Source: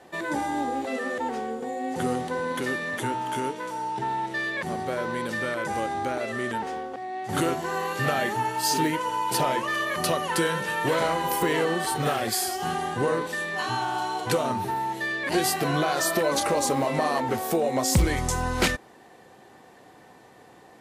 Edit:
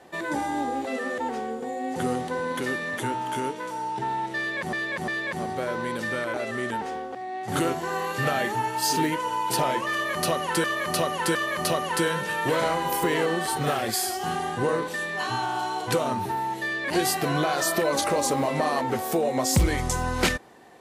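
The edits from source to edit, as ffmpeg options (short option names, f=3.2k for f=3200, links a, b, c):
-filter_complex "[0:a]asplit=6[a][b][c][d][e][f];[a]atrim=end=4.732[g];[b]atrim=start=4.378:end=4.732[h];[c]atrim=start=4.378:end=5.642[i];[d]atrim=start=6.148:end=10.452[j];[e]atrim=start=9.738:end=10.452[k];[f]atrim=start=9.738[l];[g][h]acrossfade=d=0.004:c1=hsin:c2=hsin[m];[m][i]acrossfade=d=0.004:c1=hsin:c2=hsin[n];[n][j]acrossfade=d=0.004:c1=hsin:c2=hsin[o];[o][k]acrossfade=d=0.004:c1=hsin:c2=hsin[p];[p][l]acrossfade=d=0.004:c1=hsin:c2=hsin"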